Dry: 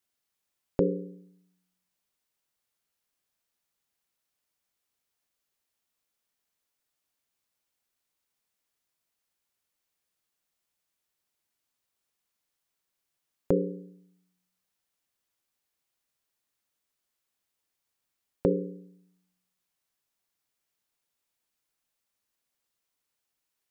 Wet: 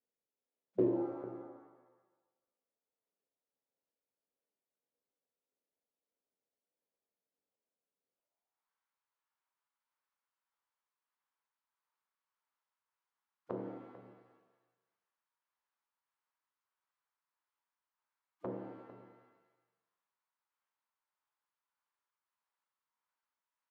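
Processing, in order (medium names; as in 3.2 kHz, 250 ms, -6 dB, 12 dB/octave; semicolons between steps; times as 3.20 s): band-pass sweep 410 Hz -> 1.1 kHz, 8.05–8.66 s; tremolo 1.6 Hz, depth 29%; de-hum 53.03 Hz, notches 25; on a send: delay 446 ms -16 dB; on the sum: formant-preserving pitch shift -7 st; in parallel at -12 dB: saturation -38.5 dBFS, distortion -5 dB; on the sum: pitch-shifted reverb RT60 1.1 s, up +7 st, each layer -8 dB, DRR 3 dB; trim +2 dB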